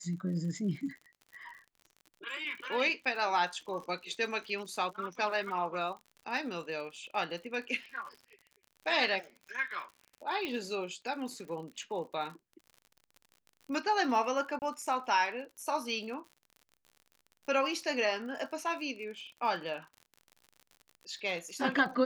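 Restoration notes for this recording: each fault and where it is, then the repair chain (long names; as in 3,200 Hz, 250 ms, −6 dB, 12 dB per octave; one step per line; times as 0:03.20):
surface crackle 59 per second −43 dBFS
0:10.45: click −22 dBFS
0:14.59–0:14.62: drop-out 29 ms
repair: click removal
repair the gap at 0:14.59, 29 ms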